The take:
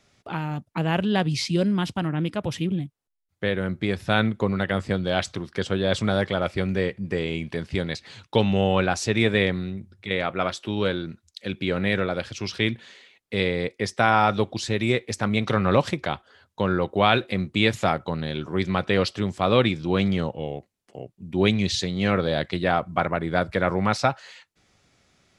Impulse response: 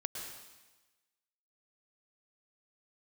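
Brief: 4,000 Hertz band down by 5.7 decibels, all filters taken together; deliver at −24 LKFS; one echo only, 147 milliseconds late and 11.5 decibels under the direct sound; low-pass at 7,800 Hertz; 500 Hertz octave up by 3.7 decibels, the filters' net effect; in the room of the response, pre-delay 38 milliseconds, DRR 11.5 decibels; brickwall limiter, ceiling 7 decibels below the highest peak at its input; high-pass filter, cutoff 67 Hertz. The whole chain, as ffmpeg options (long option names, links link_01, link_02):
-filter_complex "[0:a]highpass=67,lowpass=7800,equalizer=frequency=500:width_type=o:gain=4.5,equalizer=frequency=4000:width_type=o:gain=-7,alimiter=limit=-10.5dB:level=0:latency=1,aecho=1:1:147:0.266,asplit=2[link_01][link_02];[1:a]atrim=start_sample=2205,adelay=38[link_03];[link_02][link_03]afir=irnorm=-1:irlink=0,volume=-12dB[link_04];[link_01][link_04]amix=inputs=2:normalize=0"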